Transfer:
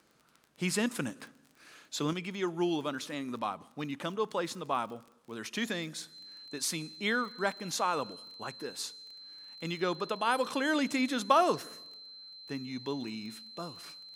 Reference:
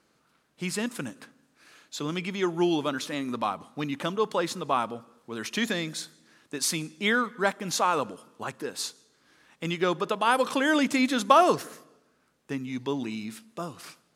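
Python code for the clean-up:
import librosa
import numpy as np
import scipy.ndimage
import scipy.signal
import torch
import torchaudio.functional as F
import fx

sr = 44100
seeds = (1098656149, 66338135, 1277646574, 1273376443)

y = fx.fix_declick_ar(x, sr, threshold=6.5)
y = fx.notch(y, sr, hz=4100.0, q=30.0)
y = fx.gain(y, sr, db=fx.steps((0.0, 0.0), (2.13, 6.0)))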